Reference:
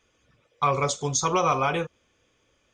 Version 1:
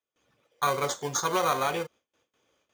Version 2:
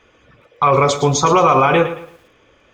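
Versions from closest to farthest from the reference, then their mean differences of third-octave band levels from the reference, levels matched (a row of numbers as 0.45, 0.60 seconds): 2, 1; 4.5, 7.5 decibels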